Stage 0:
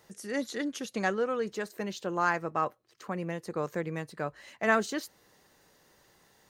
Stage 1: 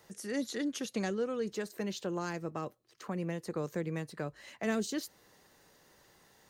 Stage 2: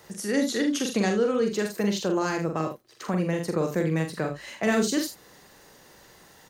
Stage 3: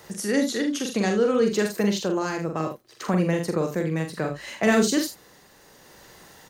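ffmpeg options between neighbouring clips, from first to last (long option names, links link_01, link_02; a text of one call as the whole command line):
ffmpeg -i in.wav -filter_complex "[0:a]acrossover=split=460|3000[link_01][link_02][link_03];[link_02]acompressor=threshold=-42dB:ratio=6[link_04];[link_01][link_04][link_03]amix=inputs=3:normalize=0" out.wav
ffmpeg -i in.wav -af "aecho=1:1:43.73|78.72:0.562|0.282,volume=9dB" out.wav
ffmpeg -i in.wav -af "tremolo=f=0.64:d=0.43,volume=4dB" out.wav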